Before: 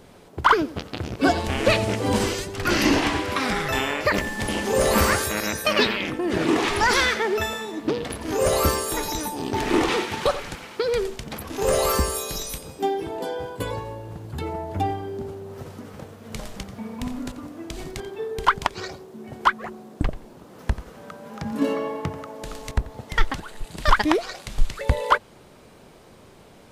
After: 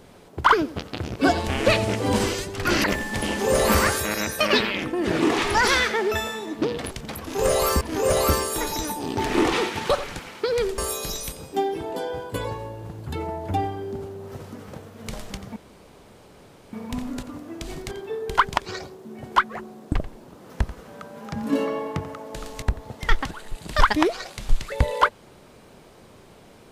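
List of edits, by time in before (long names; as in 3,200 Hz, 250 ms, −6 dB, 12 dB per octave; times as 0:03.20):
0:02.84–0:04.10: remove
0:11.14–0:12.04: move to 0:08.17
0:16.82: splice in room tone 1.17 s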